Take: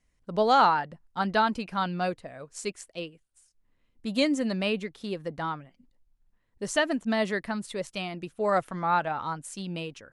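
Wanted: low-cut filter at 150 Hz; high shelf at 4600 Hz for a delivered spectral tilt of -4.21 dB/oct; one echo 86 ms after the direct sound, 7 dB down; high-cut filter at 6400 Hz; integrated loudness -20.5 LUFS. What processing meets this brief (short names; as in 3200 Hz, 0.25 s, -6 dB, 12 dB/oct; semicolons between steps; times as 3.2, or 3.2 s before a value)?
HPF 150 Hz; LPF 6400 Hz; high shelf 4600 Hz +6.5 dB; echo 86 ms -7 dB; gain +7 dB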